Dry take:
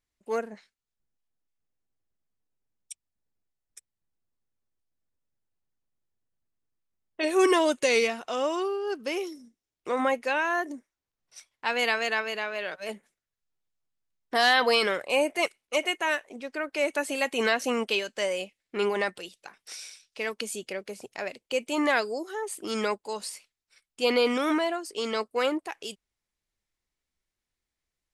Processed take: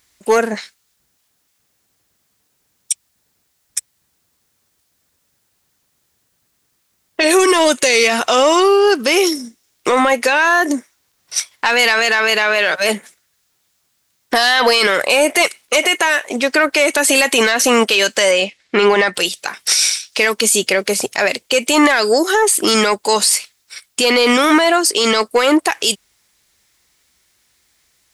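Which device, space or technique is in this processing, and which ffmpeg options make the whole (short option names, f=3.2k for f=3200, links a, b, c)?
mastering chain: -filter_complex "[0:a]highpass=58,equalizer=f=2.7k:t=o:w=0.77:g=-2.5,acompressor=threshold=-27dB:ratio=3,asoftclip=type=tanh:threshold=-20.5dB,tiltshelf=f=1.2k:g=-5,asoftclip=type=hard:threshold=-19.5dB,alimiter=level_in=28dB:limit=-1dB:release=50:level=0:latency=1,asettb=1/sr,asplit=3[a][b][c];[a]atrim=end=18.314[d];[b]atrim=start=18.31:end=19.14,asetpts=PTS-STARTPTS,afade=t=in:d=0.004:c=qsin,afade=t=out:st=0.826:d=0.004:c=qsin,lowpass=5.2k[e];[c]atrim=start=19.136[f];[d][e]acrossfade=d=0.004:c1=hsin:c2=qsin[g];[g][f]acrossfade=d=0.004:c1=qsin:c2=hsin,volume=-3dB"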